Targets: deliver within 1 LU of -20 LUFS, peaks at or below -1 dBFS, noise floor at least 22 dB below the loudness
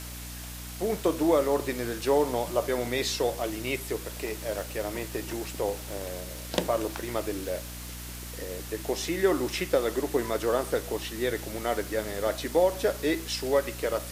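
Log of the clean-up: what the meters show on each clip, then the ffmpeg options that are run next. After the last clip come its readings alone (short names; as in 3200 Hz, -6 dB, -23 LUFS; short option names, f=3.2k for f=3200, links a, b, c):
hum 60 Hz; harmonics up to 300 Hz; hum level -39 dBFS; noise floor -40 dBFS; noise floor target -52 dBFS; loudness -29.5 LUFS; peak -11.0 dBFS; loudness target -20.0 LUFS
-> -af "bandreject=f=60:t=h:w=6,bandreject=f=120:t=h:w=6,bandreject=f=180:t=h:w=6,bandreject=f=240:t=h:w=6,bandreject=f=300:t=h:w=6"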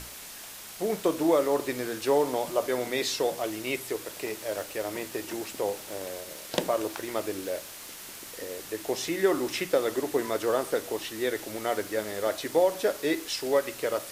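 hum none; noise floor -43 dBFS; noise floor target -52 dBFS
-> -af "afftdn=nr=9:nf=-43"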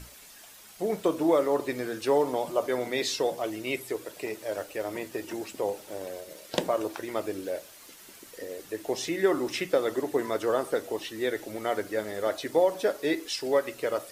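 noise floor -50 dBFS; noise floor target -52 dBFS
-> -af "afftdn=nr=6:nf=-50"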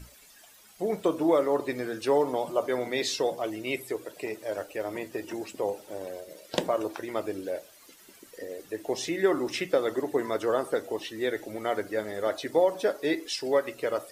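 noise floor -55 dBFS; loudness -29.5 LUFS; peak -11.5 dBFS; loudness target -20.0 LUFS
-> -af "volume=9.5dB"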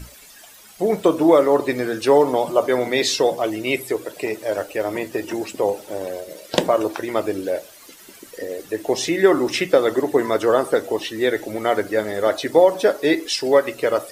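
loudness -20.0 LUFS; peak -2.0 dBFS; noise floor -45 dBFS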